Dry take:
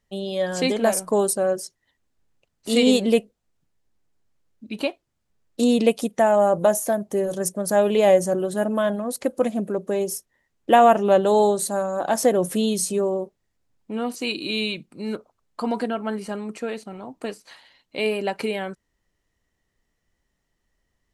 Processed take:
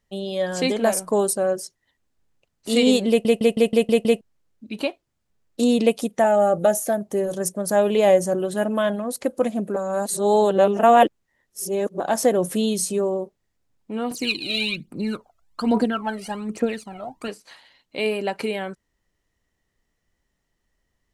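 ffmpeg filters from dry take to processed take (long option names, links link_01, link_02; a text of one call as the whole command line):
ffmpeg -i in.wav -filter_complex "[0:a]asettb=1/sr,asplit=3[link_01][link_02][link_03];[link_01]atrim=end=6.244[link_04];[link_02]atrim=start=6.24:end=7.01,asetpts=PTS-STARTPTS,afade=type=in:duration=0.004:curve=qsin,afade=type=out:start_time=0.766:duration=0.004:curve=qsin,asuperstop=centerf=1000:order=12:qfactor=5[link_05];[link_03]atrim=start=7.006[link_06];[link_04][link_05]acrossfade=duration=0.004:curve1=hsin:curve2=qsin[link_07];[link_07][link_06]acrossfade=duration=0.004:curve1=qsin:curve2=hsin,asettb=1/sr,asplit=3[link_08][link_09][link_10];[link_08]atrim=end=8.424[link_11];[link_09]atrim=start=8.42:end=9.06,asetpts=PTS-STARTPTS,afade=type=in:duration=0.004:curve=qsin,afade=type=out:start_time=0.636:duration=0.004:curve=qsin,equalizer=frequency=2600:width_type=o:width=1.1:gain=5[link_12];[link_10]atrim=start=9.056[link_13];[link_11][link_12]acrossfade=duration=0.004:curve1=hsin:curve2=qsin[link_14];[link_14][link_13]acrossfade=duration=0.004:curve1=qsin:curve2=hsin,asettb=1/sr,asplit=3[link_15][link_16][link_17];[link_15]atrim=end=14.114[link_18];[link_16]atrim=start=14.11:end=17.28,asetpts=PTS-STARTPTS,afade=type=in:duration=0.004:curve=qsin,afade=type=out:start_time=3.166:duration=0.004:curve=qsin,aphaser=in_gain=1:out_gain=1:delay=1.6:decay=0.73:speed=1.2:type=triangular[link_19];[link_17]atrim=start=17.276[link_20];[link_18][link_19]acrossfade=duration=0.004:curve1=hsin:curve2=qsin[link_21];[link_21][link_20]acrossfade=duration=0.004:curve1=qsin:curve2=hsin,asplit=10[link_22][link_23][link_24][link_25][link_26][link_27][link_28][link_29][link_30][link_31];[link_22]atrim=end=3.252[link_32];[link_23]atrim=start=3.088:end=3.252[link_33];[link_24]atrim=start=3.088:end=3.252[link_34];[link_25]atrim=start=3.088:end=3.252[link_35];[link_26]atrim=start=3.088:end=3.252[link_36];[link_27]atrim=start=3.088:end=3.252[link_37];[link_28]atrim=start=3.088:end=3.252[link_38];[link_29]atrim=start=4.208:end=9.762[link_39];[link_30]atrim=start=9.758:end=12.002,asetpts=PTS-STARTPTS,areverse[link_40];[link_31]atrim=start=11.998[link_41];[link_32][link_33]acrossfade=duration=0.004:curve1=hsin:curve2=hsin[link_42];[link_42][link_34]acrossfade=duration=0.004:curve1=hsin:curve2=hsin[link_43];[link_43][link_35]acrossfade=duration=0.004:curve1=hsin:curve2=hsin[link_44];[link_44][link_36]acrossfade=duration=0.004:curve1=hsin:curve2=hsin[link_45];[link_45][link_37]acrossfade=duration=0.004:curve1=hsin:curve2=hsin[link_46];[link_46][link_38]acrossfade=duration=0.004:curve1=hsin:curve2=hsin[link_47];[link_47][link_39]acrossfade=duration=0.004:curve1=hsin:curve2=hsin[link_48];[link_48][link_40]acrossfade=duration=0.004:curve1=hsin:curve2=hsin[link_49];[link_49][link_41]acrossfade=duration=0.004:curve1=hsin:curve2=hsin" out.wav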